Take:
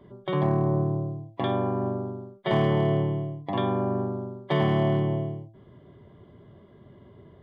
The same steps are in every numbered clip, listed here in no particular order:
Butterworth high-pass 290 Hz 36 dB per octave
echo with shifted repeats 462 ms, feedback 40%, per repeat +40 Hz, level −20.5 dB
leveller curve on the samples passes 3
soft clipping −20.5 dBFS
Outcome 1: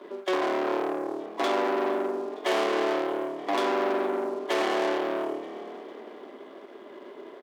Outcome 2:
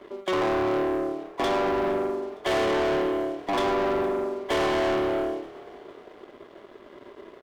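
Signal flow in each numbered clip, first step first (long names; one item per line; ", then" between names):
soft clipping, then echo with shifted repeats, then leveller curve on the samples, then Butterworth high-pass
Butterworth high-pass, then soft clipping, then leveller curve on the samples, then echo with shifted repeats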